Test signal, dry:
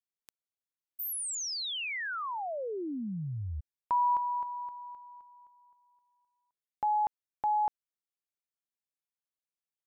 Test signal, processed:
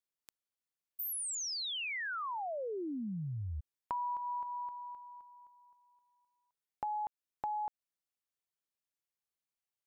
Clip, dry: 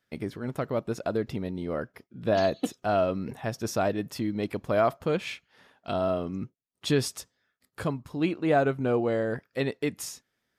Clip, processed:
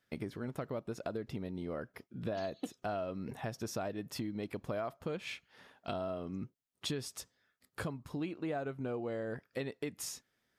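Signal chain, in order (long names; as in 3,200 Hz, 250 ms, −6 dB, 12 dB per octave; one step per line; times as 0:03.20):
downward compressor 5 to 1, threshold −35 dBFS
level −1 dB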